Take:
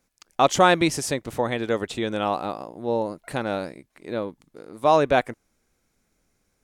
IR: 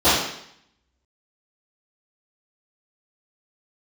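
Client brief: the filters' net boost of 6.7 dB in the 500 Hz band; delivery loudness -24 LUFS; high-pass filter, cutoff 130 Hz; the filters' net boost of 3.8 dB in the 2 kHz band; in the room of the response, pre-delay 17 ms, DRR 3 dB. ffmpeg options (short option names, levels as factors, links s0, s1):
-filter_complex "[0:a]highpass=130,equalizer=f=500:t=o:g=8,equalizer=f=2000:t=o:g=4.5,asplit=2[s0][s1];[1:a]atrim=start_sample=2205,adelay=17[s2];[s1][s2]afir=irnorm=-1:irlink=0,volume=0.0473[s3];[s0][s3]amix=inputs=2:normalize=0,volume=0.422"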